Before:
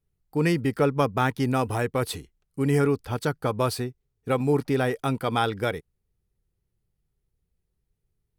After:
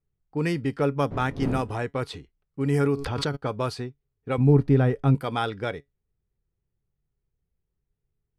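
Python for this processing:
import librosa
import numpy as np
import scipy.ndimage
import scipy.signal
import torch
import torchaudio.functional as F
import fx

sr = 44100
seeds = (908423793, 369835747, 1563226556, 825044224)

y = fx.dmg_wind(x, sr, seeds[0], corner_hz=260.0, level_db=-29.0, at=(1.1, 1.83), fade=0.02)
y = fx.riaa(y, sr, side='playback', at=(4.38, 5.15))
y = fx.env_lowpass(y, sr, base_hz=2300.0, full_db=-16.5)
y = fx.high_shelf(y, sr, hz=11000.0, db=-5.0)
y = fx.comb_fb(y, sr, f0_hz=140.0, decay_s=0.15, harmonics='all', damping=0.0, mix_pct=40)
y = fx.pre_swell(y, sr, db_per_s=23.0, at=(2.79, 3.35), fade=0.02)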